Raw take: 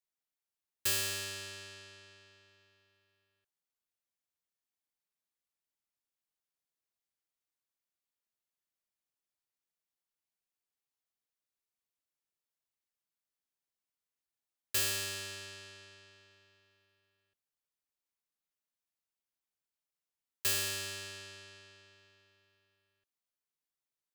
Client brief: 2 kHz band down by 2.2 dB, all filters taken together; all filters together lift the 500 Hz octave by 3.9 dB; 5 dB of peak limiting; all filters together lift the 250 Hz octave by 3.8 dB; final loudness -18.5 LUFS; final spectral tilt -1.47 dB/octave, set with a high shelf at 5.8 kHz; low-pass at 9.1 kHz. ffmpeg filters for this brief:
-af "lowpass=9100,equalizer=f=250:t=o:g=4,equalizer=f=500:t=o:g=4,equalizer=f=2000:t=o:g=-4.5,highshelf=f=5800:g=8.5,volume=7.5,alimiter=limit=0.531:level=0:latency=1"

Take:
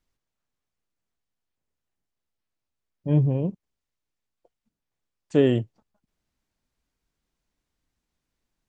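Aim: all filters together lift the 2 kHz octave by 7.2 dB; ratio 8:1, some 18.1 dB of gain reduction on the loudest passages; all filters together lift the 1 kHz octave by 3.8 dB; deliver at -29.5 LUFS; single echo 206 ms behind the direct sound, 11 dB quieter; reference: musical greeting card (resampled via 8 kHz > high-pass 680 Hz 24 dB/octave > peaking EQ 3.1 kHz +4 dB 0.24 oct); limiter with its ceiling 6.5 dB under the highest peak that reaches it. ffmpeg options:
-af "equalizer=f=1000:t=o:g=5.5,equalizer=f=2000:t=o:g=7,acompressor=threshold=0.0251:ratio=8,alimiter=level_in=1.41:limit=0.0631:level=0:latency=1,volume=0.708,aecho=1:1:206:0.282,aresample=8000,aresample=44100,highpass=f=680:w=0.5412,highpass=f=680:w=1.3066,equalizer=f=3100:t=o:w=0.24:g=4,volume=15"

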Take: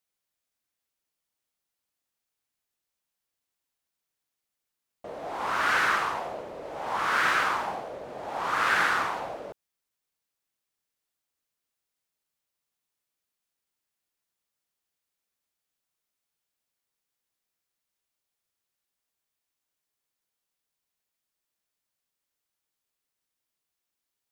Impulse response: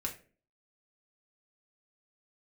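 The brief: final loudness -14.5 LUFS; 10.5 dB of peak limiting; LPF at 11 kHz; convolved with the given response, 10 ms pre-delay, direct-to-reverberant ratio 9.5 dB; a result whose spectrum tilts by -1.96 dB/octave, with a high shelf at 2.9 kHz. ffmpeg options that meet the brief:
-filter_complex "[0:a]lowpass=11000,highshelf=f=2900:g=5.5,alimiter=limit=0.0891:level=0:latency=1,asplit=2[s0][s1];[1:a]atrim=start_sample=2205,adelay=10[s2];[s1][s2]afir=irnorm=-1:irlink=0,volume=0.282[s3];[s0][s3]amix=inputs=2:normalize=0,volume=6.68"

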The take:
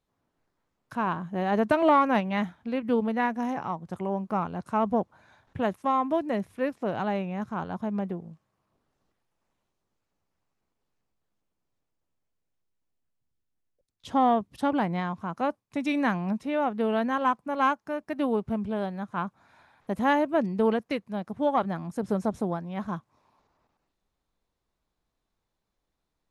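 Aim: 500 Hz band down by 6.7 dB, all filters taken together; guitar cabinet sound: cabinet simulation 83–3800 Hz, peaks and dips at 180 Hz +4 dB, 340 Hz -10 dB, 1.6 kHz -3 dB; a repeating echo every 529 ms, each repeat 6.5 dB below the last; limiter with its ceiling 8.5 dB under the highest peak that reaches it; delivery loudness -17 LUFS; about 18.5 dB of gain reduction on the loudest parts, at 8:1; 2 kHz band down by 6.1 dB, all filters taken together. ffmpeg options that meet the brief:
-af "equalizer=f=500:t=o:g=-7,equalizer=f=2000:t=o:g=-5,acompressor=threshold=0.00891:ratio=8,alimiter=level_in=5.62:limit=0.0631:level=0:latency=1,volume=0.178,highpass=83,equalizer=f=180:t=q:w=4:g=4,equalizer=f=340:t=q:w=4:g=-10,equalizer=f=1600:t=q:w=4:g=-3,lowpass=f=3800:w=0.5412,lowpass=f=3800:w=1.3066,aecho=1:1:529|1058|1587|2116|2645|3174:0.473|0.222|0.105|0.0491|0.0231|0.0109,volume=29.9"

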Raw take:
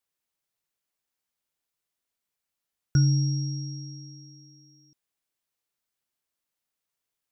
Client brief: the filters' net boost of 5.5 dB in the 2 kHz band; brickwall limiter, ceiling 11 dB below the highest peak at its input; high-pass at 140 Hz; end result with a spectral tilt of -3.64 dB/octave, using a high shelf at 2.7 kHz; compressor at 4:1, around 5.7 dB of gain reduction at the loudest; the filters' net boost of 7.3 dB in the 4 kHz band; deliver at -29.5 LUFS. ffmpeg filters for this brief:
-af "highpass=140,equalizer=f=2000:t=o:g=7,highshelf=f=2700:g=5.5,equalizer=f=4000:t=o:g=4.5,acompressor=threshold=0.0562:ratio=4,volume=1.78,alimiter=limit=0.0944:level=0:latency=1"

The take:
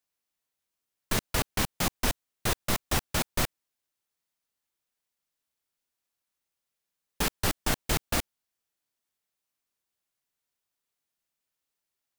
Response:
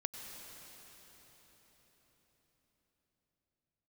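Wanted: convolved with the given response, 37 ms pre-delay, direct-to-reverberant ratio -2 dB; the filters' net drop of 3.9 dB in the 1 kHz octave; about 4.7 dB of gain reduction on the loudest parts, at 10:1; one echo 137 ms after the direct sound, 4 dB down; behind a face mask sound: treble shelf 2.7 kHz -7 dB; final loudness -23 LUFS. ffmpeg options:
-filter_complex "[0:a]equalizer=f=1000:t=o:g=-4,acompressor=threshold=0.0447:ratio=10,aecho=1:1:137:0.631,asplit=2[s0][s1];[1:a]atrim=start_sample=2205,adelay=37[s2];[s1][s2]afir=irnorm=-1:irlink=0,volume=1.26[s3];[s0][s3]amix=inputs=2:normalize=0,highshelf=f=2700:g=-7,volume=3.35"

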